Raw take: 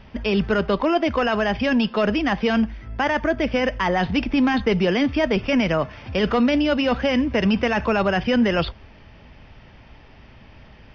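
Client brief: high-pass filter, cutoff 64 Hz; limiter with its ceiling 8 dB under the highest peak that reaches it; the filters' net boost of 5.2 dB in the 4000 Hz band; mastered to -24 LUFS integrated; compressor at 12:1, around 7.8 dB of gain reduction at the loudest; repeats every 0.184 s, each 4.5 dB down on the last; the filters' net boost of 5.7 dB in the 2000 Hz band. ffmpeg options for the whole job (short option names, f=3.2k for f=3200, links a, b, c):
-af "highpass=64,equalizer=f=2k:t=o:g=6,equalizer=f=4k:t=o:g=4.5,acompressor=threshold=-22dB:ratio=12,alimiter=limit=-20dB:level=0:latency=1,aecho=1:1:184|368|552|736|920|1104|1288|1472|1656:0.596|0.357|0.214|0.129|0.0772|0.0463|0.0278|0.0167|0.01,volume=3dB"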